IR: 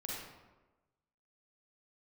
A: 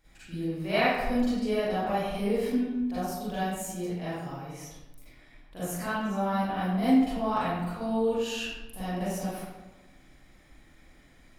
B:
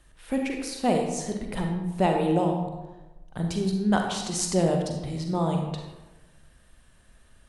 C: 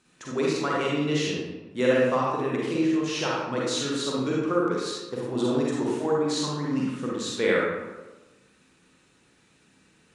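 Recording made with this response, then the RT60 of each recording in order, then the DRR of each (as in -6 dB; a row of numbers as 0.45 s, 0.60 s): C; 1.2 s, 1.2 s, 1.2 s; -13.0 dB, 2.0 dB, -5.0 dB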